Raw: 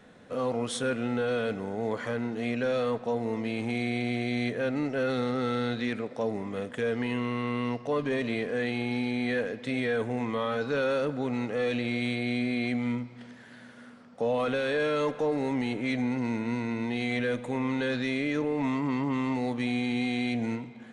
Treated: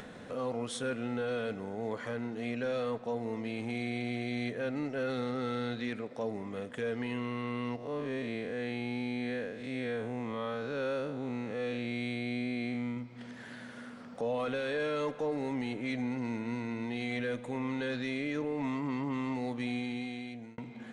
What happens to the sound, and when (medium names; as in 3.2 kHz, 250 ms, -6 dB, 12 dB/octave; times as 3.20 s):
7.76–12.97 s: spectral blur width 136 ms
19.72–20.58 s: fade out
whole clip: upward compressor, threshold -31 dBFS; trim -5.5 dB